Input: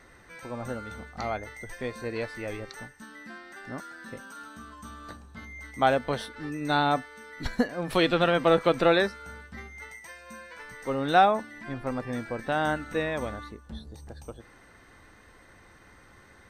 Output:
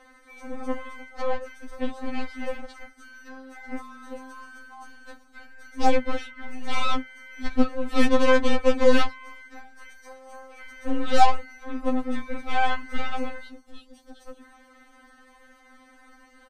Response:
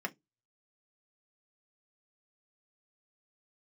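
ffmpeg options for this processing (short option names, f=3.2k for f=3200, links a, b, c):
-filter_complex "[0:a]acrossover=split=190|4200[a][b][c];[c]acompressor=threshold=-58dB:ratio=8[d];[a][b][d]amix=inputs=3:normalize=0,asoftclip=type=tanh:threshold=-10.5dB,aeval=exprs='0.282*(cos(1*acos(clip(val(0)/0.282,-1,1)))-cos(1*PI/2))+0.00631*(cos(5*acos(clip(val(0)/0.282,-1,1)))-cos(5*PI/2))+0.00251*(cos(7*acos(clip(val(0)/0.282,-1,1)))-cos(7*PI/2))+0.0447*(cos(8*acos(clip(val(0)/0.282,-1,1)))-cos(8*PI/2))':c=same,asplit=4[e][f][g][h];[f]asetrate=33038,aresample=44100,atempo=1.33484,volume=-2dB[i];[g]asetrate=37084,aresample=44100,atempo=1.18921,volume=-15dB[j];[h]asetrate=52444,aresample=44100,atempo=0.840896,volume=-18dB[k];[e][i][j][k]amix=inputs=4:normalize=0,afftfilt=real='re*3.46*eq(mod(b,12),0)':imag='im*3.46*eq(mod(b,12),0)':win_size=2048:overlap=0.75"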